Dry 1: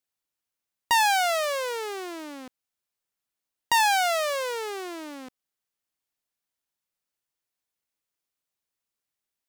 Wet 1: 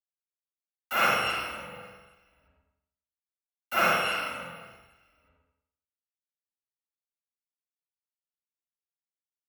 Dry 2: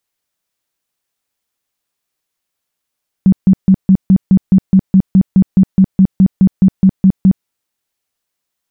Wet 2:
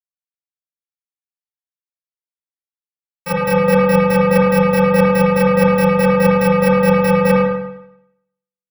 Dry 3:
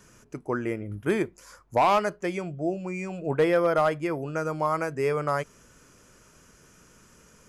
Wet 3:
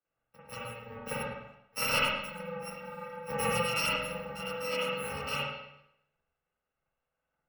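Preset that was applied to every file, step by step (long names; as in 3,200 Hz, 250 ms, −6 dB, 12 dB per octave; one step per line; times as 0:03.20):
samples in bit-reversed order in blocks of 128 samples
reverb reduction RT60 1.2 s
three-way crossover with the lows and the highs turned down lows −17 dB, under 300 Hz, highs −22 dB, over 2,600 Hz
in parallel at −3 dB: soft clipping −18 dBFS
on the sum: feedback echo with a low-pass in the loop 110 ms, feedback 29%, low-pass 1,500 Hz, level −4.5 dB
spring reverb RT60 1.4 s, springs 42/48 ms, chirp 75 ms, DRR −6 dB
multiband upward and downward expander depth 100%
level −2.5 dB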